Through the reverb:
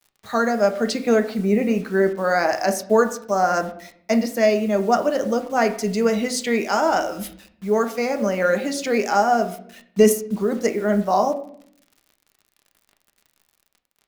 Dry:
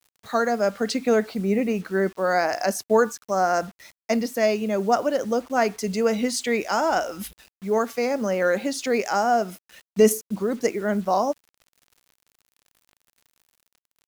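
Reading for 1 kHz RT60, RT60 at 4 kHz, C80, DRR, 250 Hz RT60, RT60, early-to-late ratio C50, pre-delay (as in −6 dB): 0.55 s, 0.45 s, 16.0 dB, 6.0 dB, 0.90 s, 0.60 s, 13.5 dB, 5 ms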